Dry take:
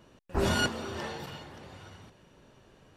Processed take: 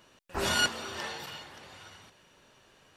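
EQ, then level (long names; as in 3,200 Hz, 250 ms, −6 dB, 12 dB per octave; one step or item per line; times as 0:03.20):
tilt shelving filter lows −5 dB, about 880 Hz
low-shelf EQ 340 Hz −4.5 dB
0.0 dB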